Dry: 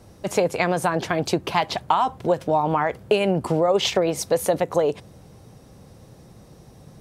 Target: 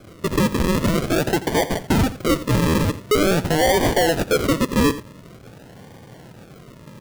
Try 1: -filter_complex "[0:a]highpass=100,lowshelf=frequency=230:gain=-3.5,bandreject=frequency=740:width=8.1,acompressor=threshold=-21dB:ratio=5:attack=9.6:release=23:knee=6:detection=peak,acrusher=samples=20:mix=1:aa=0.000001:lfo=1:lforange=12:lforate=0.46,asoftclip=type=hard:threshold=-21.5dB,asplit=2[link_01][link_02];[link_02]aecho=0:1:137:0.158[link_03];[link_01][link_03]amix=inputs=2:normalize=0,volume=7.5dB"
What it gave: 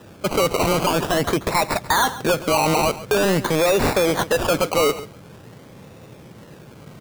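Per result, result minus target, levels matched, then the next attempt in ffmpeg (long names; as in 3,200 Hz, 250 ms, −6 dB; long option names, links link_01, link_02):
echo 52 ms late; sample-and-hold swept by an LFO: distortion −18 dB; downward compressor: peak gain reduction +5.5 dB
-filter_complex "[0:a]highpass=100,lowshelf=frequency=230:gain=-3.5,bandreject=frequency=740:width=8.1,acompressor=threshold=-21dB:ratio=5:attack=9.6:release=23:knee=6:detection=peak,acrusher=samples=20:mix=1:aa=0.000001:lfo=1:lforange=12:lforate=0.46,asoftclip=type=hard:threshold=-21.5dB,asplit=2[link_01][link_02];[link_02]aecho=0:1:85:0.158[link_03];[link_01][link_03]amix=inputs=2:normalize=0,volume=7.5dB"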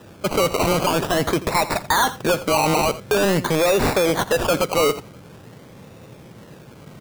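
sample-and-hold swept by an LFO: distortion −18 dB; downward compressor: peak gain reduction +5.5 dB
-filter_complex "[0:a]highpass=100,lowshelf=frequency=230:gain=-3.5,bandreject=frequency=740:width=8.1,acompressor=threshold=-21dB:ratio=5:attack=9.6:release=23:knee=6:detection=peak,acrusher=samples=47:mix=1:aa=0.000001:lfo=1:lforange=28.2:lforate=0.46,asoftclip=type=hard:threshold=-21.5dB,asplit=2[link_01][link_02];[link_02]aecho=0:1:85:0.158[link_03];[link_01][link_03]amix=inputs=2:normalize=0,volume=7.5dB"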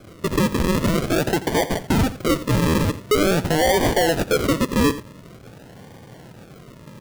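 downward compressor: peak gain reduction +5.5 dB
-filter_complex "[0:a]highpass=100,lowshelf=frequency=230:gain=-3.5,bandreject=frequency=740:width=8.1,acrusher=samples=47:mix=1:aa=0.000001:lfo=1:lforange=28.2:lforate=0.46,asoftclip=type=hard:threshold=-21.5dB,asplit=2[link_01][link_02];[link_02]aecho=0:1:85:0.158[link_03];[link_01][link_03]amix=inputs=2:normalize=0,volume=7.5dB"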